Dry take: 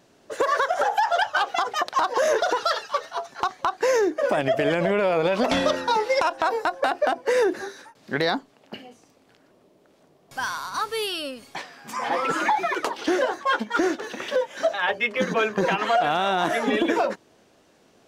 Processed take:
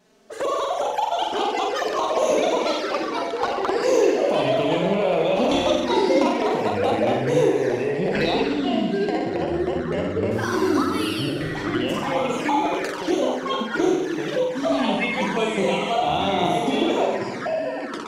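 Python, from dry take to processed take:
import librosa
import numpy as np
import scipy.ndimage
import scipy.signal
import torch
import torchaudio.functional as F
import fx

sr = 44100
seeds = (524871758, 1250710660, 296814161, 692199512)

y = fx.room_flutter(x, sr, wall_m=7.8, rt60_s=0.88)
y = fx.env_flanger(y, sr, rest_ms=4.8, full_db=-17.5)
y = fx.echo_pitch(y, sr, ms=791, semitones=-5, count=2, db_per_echo=-3.0)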